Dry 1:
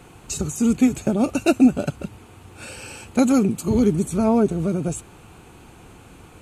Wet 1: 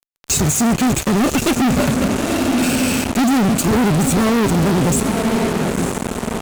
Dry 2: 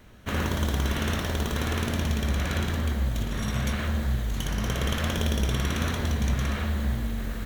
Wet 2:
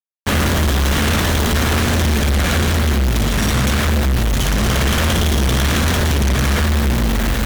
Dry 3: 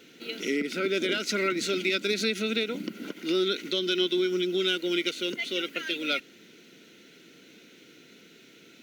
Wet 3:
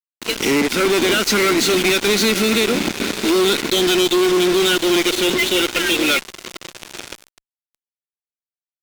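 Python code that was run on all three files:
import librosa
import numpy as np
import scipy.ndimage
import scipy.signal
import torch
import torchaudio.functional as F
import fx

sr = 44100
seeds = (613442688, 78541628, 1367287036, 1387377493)

y = fx.echo_diffused(x, sr, ms=997, feedback_pct=44, wet_db=-13)
y = fx.fuzz(y, sr, gain_db=38.0, gate_db=-36.0)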